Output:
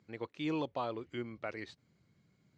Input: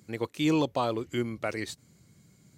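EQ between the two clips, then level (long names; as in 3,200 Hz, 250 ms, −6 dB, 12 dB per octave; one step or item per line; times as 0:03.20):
high-frequency loss of the air 200 metres
low-shelf EQ 400 Hz −6 dB
−6.0 dB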